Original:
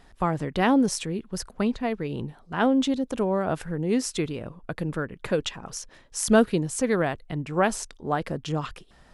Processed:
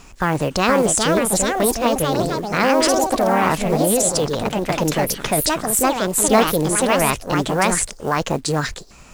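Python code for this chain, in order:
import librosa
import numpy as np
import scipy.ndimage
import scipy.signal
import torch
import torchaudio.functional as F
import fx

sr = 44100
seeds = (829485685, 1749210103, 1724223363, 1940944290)

p1 = scipy.signal.sosfilt(scipy.signal.butter(12, 9900.0, 'lowpass', fs=sr, output='sos'), x)
p2 = fx.peak_eq(p1, sr, hz=5000.0, db=9.0, octaves=0.68)
p3 = fx.over_compress(p2, sr, threshold_db=-28.0, ratio=-1.0)
p4 = p2 + (p3 * librosa.db_to_amplitude(0.0))
p5 = fx.formant_shift(p4, sr, semitones=6)
p6 = fx.quant_companded(p5, sr, bits=6)
p7 = fx.echo_pitch(p6, sr, ms=508, semitones=3, count=2, db_per_echo=-3.0)
y = p7 * librosa.db_to_amplitude(1.5)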